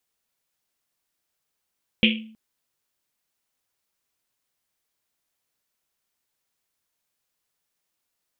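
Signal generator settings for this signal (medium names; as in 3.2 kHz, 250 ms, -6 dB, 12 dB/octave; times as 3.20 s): Risset drum length 0.32 s, pitch 220 Hz, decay 0.59 s, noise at 2.8 kHz, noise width 1 kHz, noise 50%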